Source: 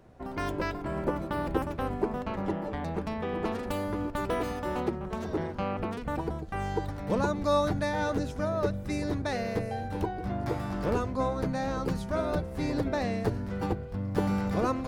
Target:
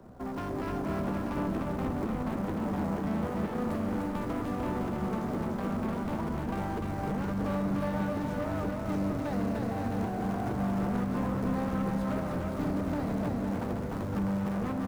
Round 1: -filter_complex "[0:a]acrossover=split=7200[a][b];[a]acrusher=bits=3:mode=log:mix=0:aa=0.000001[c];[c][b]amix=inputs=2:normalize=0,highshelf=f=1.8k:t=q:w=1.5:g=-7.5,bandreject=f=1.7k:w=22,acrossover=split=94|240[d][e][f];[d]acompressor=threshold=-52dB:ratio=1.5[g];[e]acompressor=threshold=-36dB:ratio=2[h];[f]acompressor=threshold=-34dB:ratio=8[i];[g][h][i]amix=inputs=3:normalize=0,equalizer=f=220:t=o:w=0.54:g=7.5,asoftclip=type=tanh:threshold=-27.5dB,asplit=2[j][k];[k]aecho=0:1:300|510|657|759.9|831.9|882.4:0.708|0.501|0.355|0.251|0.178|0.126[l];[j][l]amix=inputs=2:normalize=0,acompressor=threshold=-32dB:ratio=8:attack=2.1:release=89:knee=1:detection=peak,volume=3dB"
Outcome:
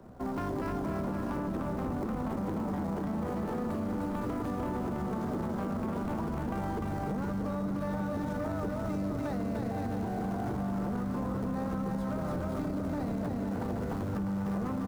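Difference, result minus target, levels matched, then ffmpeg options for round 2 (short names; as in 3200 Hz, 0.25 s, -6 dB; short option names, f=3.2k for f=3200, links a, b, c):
compressor: peak gain reduction +9 dB; soft clip: distortion -6 dB
-filter_complex "[0:a]acrossover=split=7200[a][b];[a]acrusher=bits=3:mode=log:mix=0:aa=0.000001[c];[c][b]amix=inputs=2:normalize=0,highshelf=f=1.8k:t=q:w=1.5:g=-7.5,bandreject=f=1.7k:w=22,acrossover=split=94|240[d][e][f];[d]acompressor=threshold=-52dB:ratio=1.5[g];[e]acompressor=threshold=-36dB:ratio=2[h];[f]acompressor=threshold=-34dB:ratio=8[i];[g][h][i]amix=inputs=3:normalize=0,equalizer=f=220:t=o:w=0.54:g=7.5,asoftclip=type=tanh:threshold=-34dB,asplit=2[j][k];[k]aecho=0:1:300|510|657|759.9|831.9|882.4:0.708|0.501|0.355|0.251|0.178|0.126[l];[j][l]amix=inputs=2:normalize=0,volume=3dB"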